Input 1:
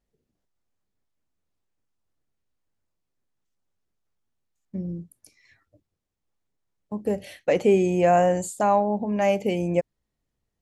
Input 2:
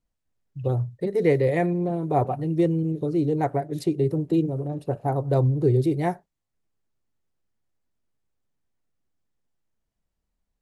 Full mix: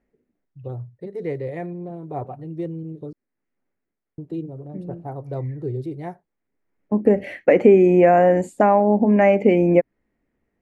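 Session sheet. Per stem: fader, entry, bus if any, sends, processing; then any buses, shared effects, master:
+3.0 dB, 0.00 s, no send, downward compressor 2.5 to 1, threshold −23 dBFS, peak gain reduction 6.5 dB; drawn EQ curve 140 Hz 0 dB, 250 Hz +12 dB, 1,100 Hz +4 dB, 2,100 Hz +12 dB, 3,500 Hz −6 dB; automatic ducking −12 dB, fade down 0.55 s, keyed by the second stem
−7.5 dB, 0.00 s, muted 0:03.13–0:04.18, no send, no processing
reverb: not used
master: high-shelf EQ 4,200 Hz −10 dB

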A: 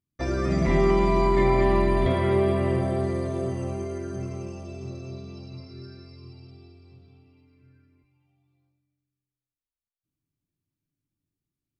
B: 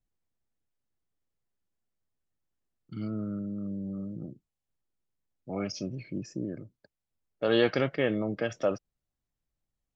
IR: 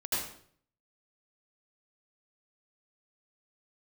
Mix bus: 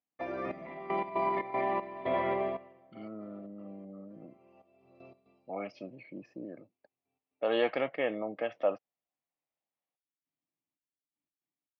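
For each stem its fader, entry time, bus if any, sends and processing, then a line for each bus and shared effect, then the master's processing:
−4.0 dB, 0.00 s, no send, brickwall limiter −16 dBFS, peak gain reduction 6.5 dB; gate pattern "xxxx...x.xx.xx.." 117 BPM −12 dB; automatic ducking −21 dB, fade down 0.50 s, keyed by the second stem
−4.0 dB, 0.00 s, no send, parametric band 4,400 Hz +4 dB 0.34 octaves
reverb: not used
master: automatic gain control gain up to 4 dB; loudspeaker in its box 390–2,700 Hz, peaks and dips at 390 Hz −7 dB, 740 Hz +4 dB, 1,500 Hz −10 dB

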